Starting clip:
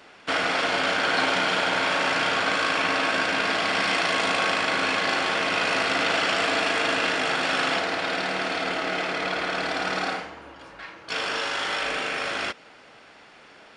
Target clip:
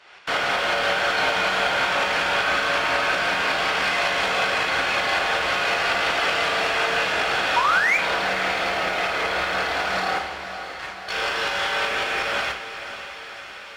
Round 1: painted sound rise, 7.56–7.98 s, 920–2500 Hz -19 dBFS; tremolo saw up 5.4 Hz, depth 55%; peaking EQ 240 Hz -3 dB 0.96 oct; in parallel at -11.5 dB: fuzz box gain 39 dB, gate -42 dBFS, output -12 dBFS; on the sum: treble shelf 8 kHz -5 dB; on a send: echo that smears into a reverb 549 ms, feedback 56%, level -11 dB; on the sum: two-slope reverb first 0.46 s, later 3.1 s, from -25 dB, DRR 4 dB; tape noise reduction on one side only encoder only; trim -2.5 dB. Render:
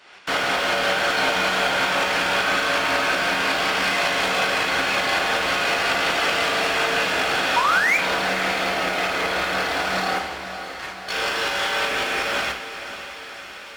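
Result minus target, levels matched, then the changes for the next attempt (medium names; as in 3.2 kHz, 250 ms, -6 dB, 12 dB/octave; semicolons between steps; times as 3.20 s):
250 Hz band +4.0 dB; 8 kHz band +3.5 dB
change: peaking EQ 240 Hz -11 dB 0.96 oct; change: treble shelf 8 kHz -15.5 dB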